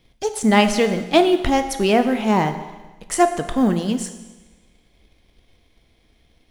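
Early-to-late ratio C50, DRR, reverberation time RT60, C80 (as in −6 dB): 10.5 dB, 8.0 dB, 1.2 s, 12.0 dB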